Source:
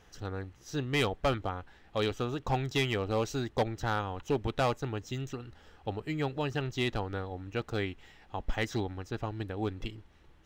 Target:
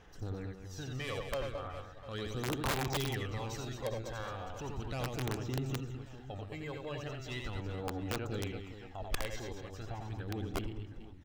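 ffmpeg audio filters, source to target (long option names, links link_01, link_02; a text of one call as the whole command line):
ffmpeg -i in.wav -af "alimiter=level_in=4dB:limit=-24dB:level=0:latency=1:release=20,volume=-4dB,aphaser=in_gain=1:out_gain=1:delay=1.9:decay=0.6:speed=0.4:type=sinusoidal,aecho=1:1:80|200|380|650|1055:0.631|0.398|0.251|0.158|0.1,aeval=exprs='(mod(11.2*val(0)+1,2)-1)/11.2':channel_layout=same,atempo=0.93,volume=-6dB" out.wav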